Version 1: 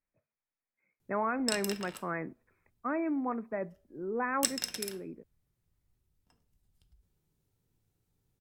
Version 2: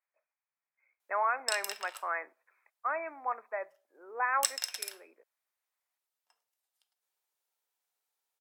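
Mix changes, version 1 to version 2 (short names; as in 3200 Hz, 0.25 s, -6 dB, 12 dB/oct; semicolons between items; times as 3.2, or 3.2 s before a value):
speech +4.0 dB; master: add HPF 670 Hz 24 dB/oct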